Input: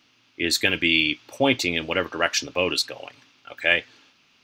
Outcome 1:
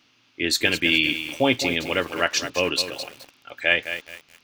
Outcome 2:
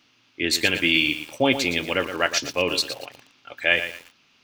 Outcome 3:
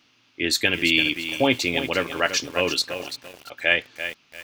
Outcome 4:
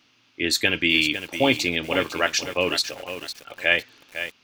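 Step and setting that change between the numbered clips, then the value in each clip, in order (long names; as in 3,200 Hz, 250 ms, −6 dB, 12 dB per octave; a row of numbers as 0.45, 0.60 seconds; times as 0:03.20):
feedback echo at a low word length, delay time: 210, 116, 339, 504 milliseconds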